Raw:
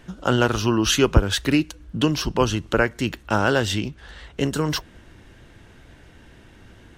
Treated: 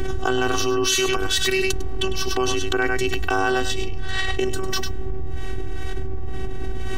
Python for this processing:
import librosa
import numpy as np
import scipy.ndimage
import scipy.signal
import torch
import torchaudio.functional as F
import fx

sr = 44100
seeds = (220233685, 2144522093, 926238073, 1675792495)

p1 = fx.dmg_wind(x, sr, seeds[0], corner_hz=110.0, level_db=-22.0)
p2 = fx.tilt_shelf(p1, sr, db=-4.5, hz=1200.0, at=(0.87, 2.08))
p3 = fx.level_steps(p2, sr, step_db=13)
p4 = p2 + (p3 * librosa.db_to_amplitude(-1.0))
p5 = fx.robotise(p4, sr, hz=379.0)
p6 = p5 + fx.echo_single(p5, sr, ms=101, db=-9.5, dry=0)
p7 = fx.env_flatten(p6, sr, amount_pct=100)
y = p7 * librosa.db_to_amplitude(-15.5)